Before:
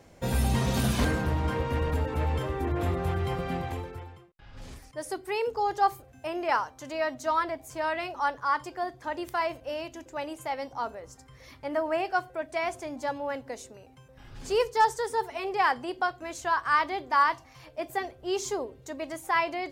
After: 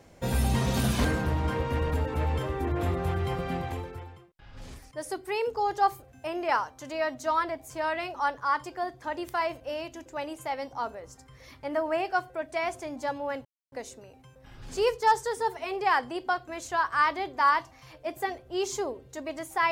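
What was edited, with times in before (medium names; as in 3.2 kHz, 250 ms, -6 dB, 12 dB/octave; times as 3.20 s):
13.45 s: insert silence 0.27 s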